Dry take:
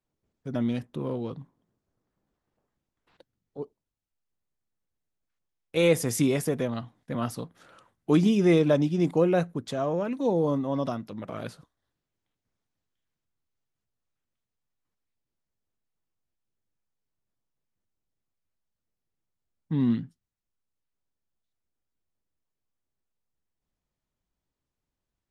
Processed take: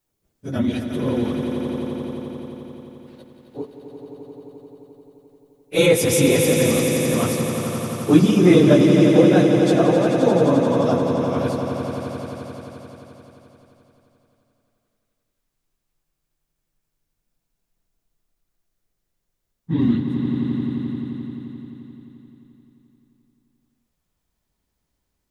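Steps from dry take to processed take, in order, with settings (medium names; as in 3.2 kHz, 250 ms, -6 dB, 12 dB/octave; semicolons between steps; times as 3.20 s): phase randomisation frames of 50 ms; treble shelf 5.8 kHz +11.5 dB, from 5.86 s +4.5 dB; echo with a slow build-up 87 ms, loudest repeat 5, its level -9 dB; trim +6 dB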